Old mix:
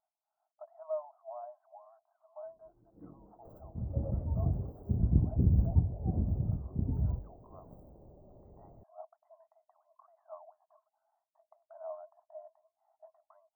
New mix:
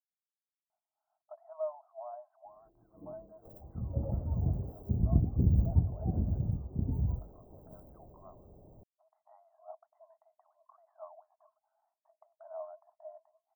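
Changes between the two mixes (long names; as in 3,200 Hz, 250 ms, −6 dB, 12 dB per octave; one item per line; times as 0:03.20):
speech: entry +0.70 s
master: add high-shelf EQ 12,000 Hz +11 dB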